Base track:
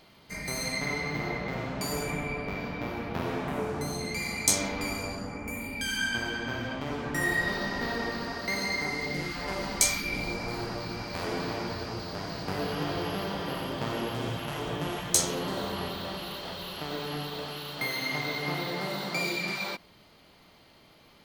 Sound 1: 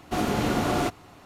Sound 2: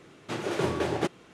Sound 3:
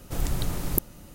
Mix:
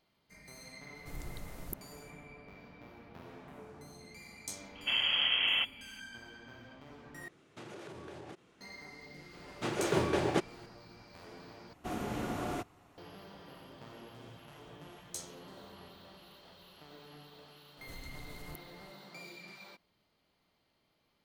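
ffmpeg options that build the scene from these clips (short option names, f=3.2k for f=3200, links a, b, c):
-filter_complex "[3:a]asplit=2[a][b];[1:a]asplit=2[c][d];[2:a]asplit=2[e][f];[0:a]volume=-19dB[g];[c]lowpass=f=2.9k:t=q:w=0.5098,lowpass=f=2.9k:t=q:w=0.6013,lowpass=f=2.9k:t=q:w=0.9,lowpass=f=2.9k:t=q:w=2.563,afreqshift=-3400[h];[e]acompressor=threshold=-32dB:ratio=12:attack=2.2:release=61:knee=1:detection=rms[i];[d]equalizer=f=4.4k:t=o:w=0.75:g=-4.5[j];[b]acompressor=threshold=-27dB:ratio=6:attack=3.2:release=140:knee=1:detection=peak[k];[g]asplit=3[l][m][n];[l]atrim=end=7.284[o];[i]atrim=end=1.33,asetpts=PTS-STARTPTS,volume=-11dB[p];[m]atrim=start=8.606:end=11.734[q];[j]atrim=end=1.25,asetpts=PTS-STARTPTS,volume=-12dB[r];[n]atrim=start=12.976[s];[a]atrim=end=1.14,asetpts=PTS-STARTPTS,volume=-17dB,afade=t=in:d=0.004:c=hsin,afade=t=out:st=1.136:d=0.004:c=hsin,adelay=950[t];[h]atrim=end=1.25,asetpts=PTS-STARTPTS,volume=-5dB,afade=t=in:d=0.004:c=hsin,afade=t=out:st=1.246:d=0.004:c=hsin,adelay=4750[u];[f]atrim=end=1.33,asetpts=PTS-STARTPTS,volume=-2dB,afade=t=in:d=0.004:c=hsin,afade=t=out:st=1.326:d=0.004:c=hsin,adelay=9330[v];[k]atrim=end=1.14,asetpts=PTS-STARTPTS,volume=-16.5dB,afade=t=in:d=0.004:c=hsin,afade=t=out:st=1.136:d=0.004:c=hsin,adelay=17770[w];[o][p]acrossfade=d=0.004:c1=hsin:c2=hsin[x];[x][q]acrossfade=d=0.004:c1=hsin:c2=hsin[y];[y][r]acrossfade=d=0.004:c1=hsin:c2=hsin[z];[z][s]acrossfade=d=0.004:c1=hsin:c2=hsin[aa];[aa][t][u][v][w]amix=inputs=5:normalize=0"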